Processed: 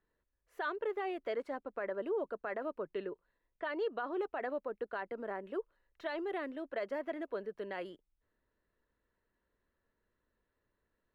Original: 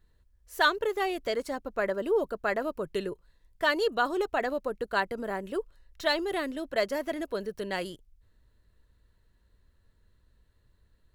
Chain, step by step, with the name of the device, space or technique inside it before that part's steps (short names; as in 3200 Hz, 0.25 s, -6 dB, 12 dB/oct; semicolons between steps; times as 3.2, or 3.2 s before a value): DJ mixer with the lows and highs turned down (three-band isolator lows -17 dB, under 220 Hz, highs -22 dB, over 2800 Hz; limiter -22.5 dBFS, peak gain reduction 10.5 dB); 2.79–4.21 LPF 5100 Hz 12 dB/oct; gain -5.5 dB